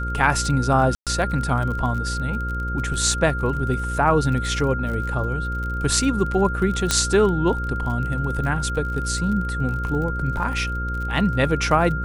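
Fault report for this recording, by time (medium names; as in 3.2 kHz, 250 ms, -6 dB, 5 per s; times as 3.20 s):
buzz 60 Hz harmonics 9 -27 dBFS
crackle 34 per s -29 dBFS
whine 1.4 kHz -28 dBFS
0.95–1.07 s: dropout 117 ms
6.91 s: pop -3 dBFS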